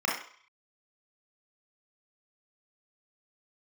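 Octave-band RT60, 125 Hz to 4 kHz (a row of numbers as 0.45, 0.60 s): 0.30, 0.35, 0.45, 0.60, 0.55, 0.50 s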